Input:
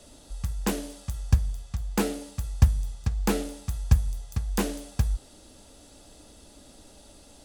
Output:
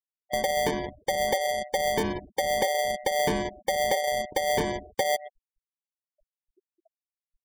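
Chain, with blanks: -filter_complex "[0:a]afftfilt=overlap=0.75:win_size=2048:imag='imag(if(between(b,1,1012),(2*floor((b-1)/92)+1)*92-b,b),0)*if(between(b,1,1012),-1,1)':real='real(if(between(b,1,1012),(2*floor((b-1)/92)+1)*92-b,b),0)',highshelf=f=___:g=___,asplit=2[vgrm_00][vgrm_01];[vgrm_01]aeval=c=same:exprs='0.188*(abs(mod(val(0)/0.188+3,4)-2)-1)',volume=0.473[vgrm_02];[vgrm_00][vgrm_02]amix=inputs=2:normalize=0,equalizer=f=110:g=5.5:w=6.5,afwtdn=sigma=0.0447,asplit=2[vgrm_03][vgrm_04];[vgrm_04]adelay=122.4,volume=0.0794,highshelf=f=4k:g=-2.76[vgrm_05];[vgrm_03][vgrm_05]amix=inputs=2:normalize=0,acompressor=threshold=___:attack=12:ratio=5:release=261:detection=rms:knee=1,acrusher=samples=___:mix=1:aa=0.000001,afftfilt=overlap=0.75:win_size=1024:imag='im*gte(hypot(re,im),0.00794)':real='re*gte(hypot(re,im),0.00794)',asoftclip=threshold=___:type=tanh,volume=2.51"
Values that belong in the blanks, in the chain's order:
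4.9k, 8, 0.0355, 33, 0.0473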